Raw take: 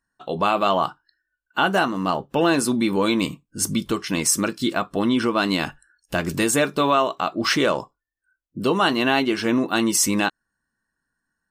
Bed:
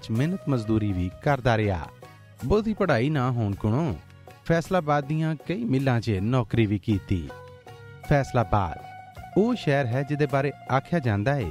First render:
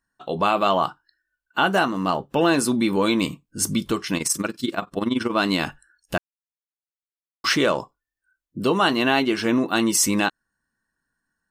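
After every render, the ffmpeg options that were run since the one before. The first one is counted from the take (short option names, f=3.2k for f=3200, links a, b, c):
-filter_complex "[0:a]asettb=1/sr,asplit=3[a][b][c];[a]atrim=end=4.174[d];[b]atrim=start=4.17:end=5.32,asetpts=PTS-STARTPTS,afade=t=in:d=0.004:c=qsin,afade=t=out:st=1.146:d=0.004:c=qsin,tremolo=f=21:d=0.788[e];[c]atrim=start=5.316[f];[d][e]acrossfade=d=0.004:c1=hsin:c2=qsin[g];[g][f]acrossfade=d=0.004:c1=qsin:c2=hsin,asplit=3[h][i][j];[h]atrim=end=6.18,asetpts=PTS-STARTPTS,afade=t=out:st=6.176:d=0.004:c=hsin[k];[i]atrim=start=6.18:end=7.44,asetpts=PTS-STARTPTS,volume=0[l];[j]atrim=start=7.44,asetpts=PTS-STARTPTS,afade=t=in:d=0.004:c=hsin[m];[k][l][m]concat=n=3:v=0:a=1"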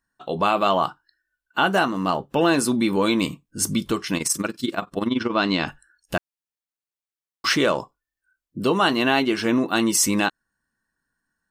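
-filter_complex "[0:a]asettb=1/sr,asplit=3[a][b][c];[a]atrim=end=5.074[d];[b]atrim=start=5.07:end=5.68,asetpts=PTS-STARTPTS,afade=t=in:d=0.004:c=qsin,afade=t=out:st=0.606:d=0.004:c=qsin,lowpass=f=5.8k:w=0.5412,lowpass=f=5.8k:w=1.3066[e];[c]atrim=start=5.676[f];[d][e]acrossfade=d=0.004:c1=hsin:c2=qsin[g];[g][f]acrossfade=d=0.004:c1=qsin:c2=hsin"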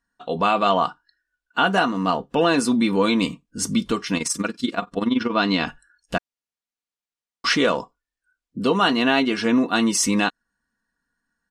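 -af "lowpass=7.9k,aecho=1:1:4.2:0.43"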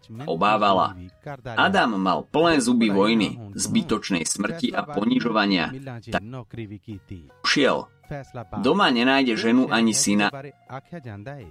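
-filter_complex "[1:a]volume=-12.5dB[a];[0:a][a]amix=inputs=2:normalize=0"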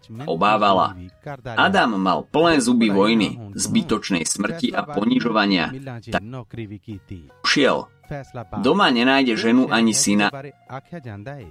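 -af "volume=2.5dB"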